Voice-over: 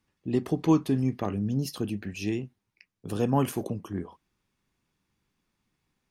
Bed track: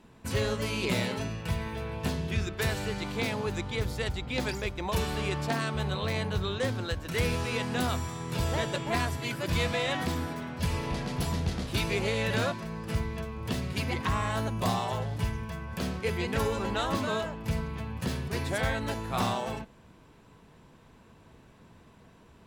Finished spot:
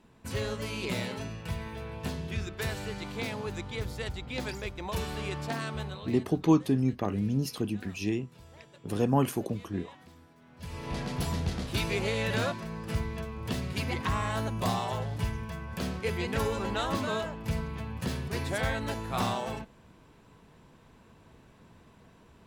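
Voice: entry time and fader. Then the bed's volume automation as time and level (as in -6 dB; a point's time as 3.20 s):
5.80 s, -0.5 dB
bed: 5.78 s -4 dB
6.45 s -23.5 dB
10.35 s -23.5 dB
10.97 s -1 dB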